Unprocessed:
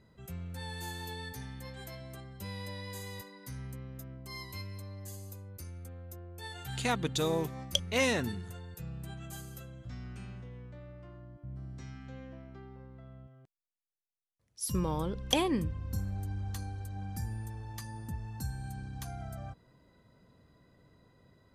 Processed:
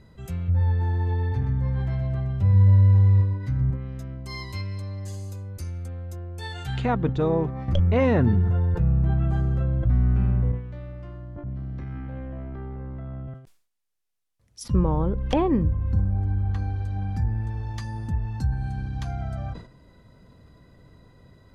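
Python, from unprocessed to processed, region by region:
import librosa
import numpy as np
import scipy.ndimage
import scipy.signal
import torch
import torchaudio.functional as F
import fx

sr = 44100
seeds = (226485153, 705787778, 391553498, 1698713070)

y = fx.chain(x, sr, fx.peak_eq(hz=100.0, db=14.0, octaves=0.74),
    fx.echo_feedback(ms=123, feedback_pct=37, wet_db=-6.0), at=(0.48, 3.71))
y = fx.chain(y, sr, fx.low_shelf(hz=110.0, db=7.0),
    fx.env_flatten(amount_pct=50), at=(7.68, 10.52))
y = fx.chain(y, sr, fx.lowpass(hz=1700.0, slope=12),
    fx.transient(attack_db=-9, sustain_db=8),
    fx.band_squash(depth_pct=100), at=(11.36, 13.34))
y = fx.env_lowpass_down(y, sr, base_hz=1200.0, full_db=-31.5)
y = fx.low_shelf(y, sr, hz=79.0, db=11.0)
y = fx.sustainer(y, sr, db_per_s=120.0)
y = y * 10.0 ** (7.5 / 20.0)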